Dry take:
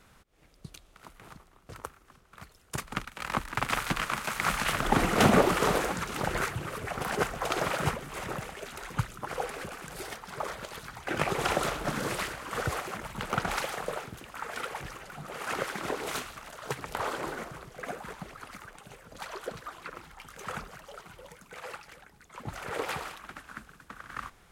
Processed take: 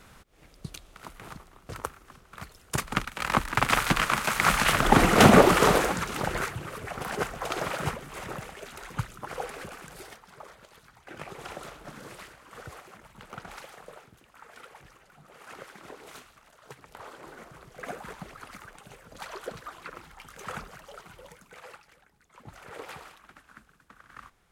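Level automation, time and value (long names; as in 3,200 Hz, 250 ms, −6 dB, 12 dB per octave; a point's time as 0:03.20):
0:05.63 +6 dB
0:06.59 −1.5 dB
0:09.79 −1.5 dB
0:10.47 −12.5 dB
0:17.18 −12.5 dB
0:17.86 0 dB
0:21.29 0 dB
0:21.88 −8.5 dB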